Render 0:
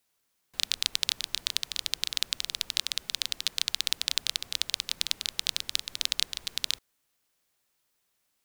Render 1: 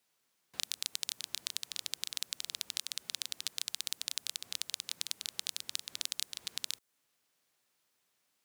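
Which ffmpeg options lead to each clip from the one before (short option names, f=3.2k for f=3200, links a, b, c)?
-filter_complex "[0:a]highpass=110,highshelf=f=11k:g=-5.5,acrossover=split=6900[a][b];[a]acompressor=threshold=-36dB:ratio=6[c];[c][b]amix=inputs=2:normalize=0"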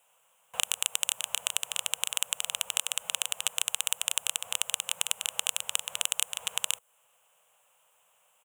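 -af "firequalizer=gain_entry='entry(190,0);entry(310,-27);entry(480,13);entry(980,15);entry(1900,2);entry(2900,13);entry(4500,-15);entry(7300,11);entry(13000,6)':delay=0.05:min_phase=1,volume=3dB"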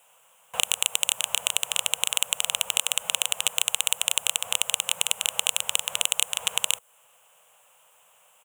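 -af "asoftclip=type=tanh:threshold=-10dB,volume=8dB"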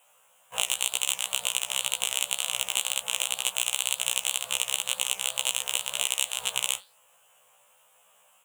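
-af "flanger=delay=5.1:depth=7.4:regen=84:speed=2:shape=triangular,afftfilt=real='re*1.73*eq(mod(b,3),0)':imag='im*1.73*eq(mod(b,3),0)':win_size=2048:overlap=0.75,volume=4.5dB"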